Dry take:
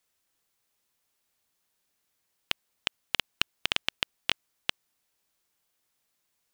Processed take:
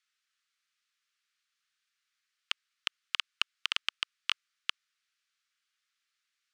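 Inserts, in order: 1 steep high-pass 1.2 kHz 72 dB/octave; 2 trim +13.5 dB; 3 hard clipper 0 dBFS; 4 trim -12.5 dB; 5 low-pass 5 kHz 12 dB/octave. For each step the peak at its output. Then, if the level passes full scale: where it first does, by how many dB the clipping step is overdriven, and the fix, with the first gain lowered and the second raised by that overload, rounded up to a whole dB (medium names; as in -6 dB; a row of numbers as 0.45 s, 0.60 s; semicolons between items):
-6.5 dBFS, +7.0 dBFS, 0.0 dBFS, -12.5 dBFS, -11.5 dBFS; step 2, 7.0 dB; step 2 +6.5 dB, step 4 -5.5 dB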